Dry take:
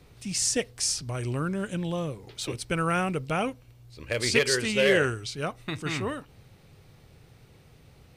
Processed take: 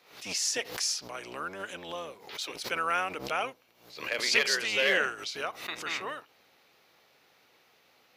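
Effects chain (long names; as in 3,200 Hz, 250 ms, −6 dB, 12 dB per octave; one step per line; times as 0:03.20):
sub-octave generator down 1 octave, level +3 dB
high-pass filter 730 Hz 12 dB per octave
parametric band 8,600 Hz −14 dB 0.33 octaves
background raised ahead of every attack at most 100 dB per second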